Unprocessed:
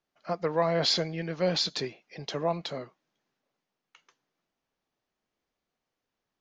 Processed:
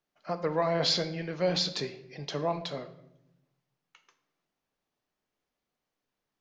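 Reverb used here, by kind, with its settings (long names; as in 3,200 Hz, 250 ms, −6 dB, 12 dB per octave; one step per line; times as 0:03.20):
rectangular room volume 250 cubic metres, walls mixed, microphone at 0.38 metres
level −1.5 dB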